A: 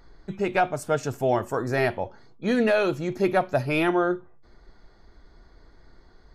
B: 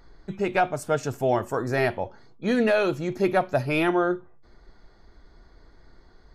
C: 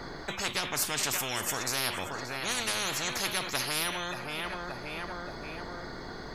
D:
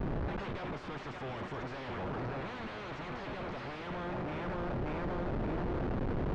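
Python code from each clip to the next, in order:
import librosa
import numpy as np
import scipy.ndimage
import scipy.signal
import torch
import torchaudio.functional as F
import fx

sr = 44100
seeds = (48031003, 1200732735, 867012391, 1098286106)

y1 = x
y2 = fx.echo_feedback(y1, sr, ms=577, feedback_pct=37, wet_db=-19.0)
y2 = fx.spectral_comp(y2, sr, ratio=10.0)
y2 = F.gain(torch.from_numpy(y2), -2.0).numpy()
y3 = fx.schmitt(y2, sr, flips_db=-39.5)
y3 = fx.rider(y3, sr, range_db=10, speed_s=0.5)
y3 = fx.spacing_loss(y3, sr, db_at_10k=44)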